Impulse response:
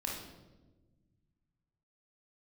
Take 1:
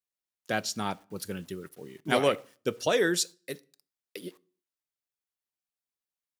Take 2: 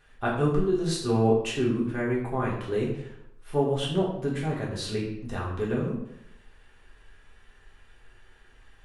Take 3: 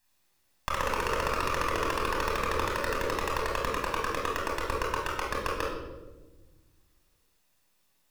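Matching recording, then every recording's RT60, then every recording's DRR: 3; 0.50, 0.80, 1.2 seconds; 16.5, −5.0, −2.5 decibels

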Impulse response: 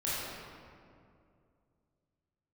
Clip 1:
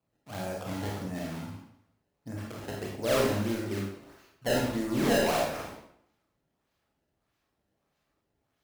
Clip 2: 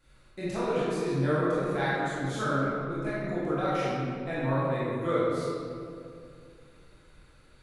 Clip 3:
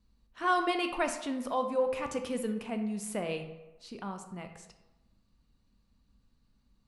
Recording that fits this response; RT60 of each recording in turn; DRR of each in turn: 2; 0.70, 2.4, 1.1 seconds; −2.5, −10.0, 6.0 decibels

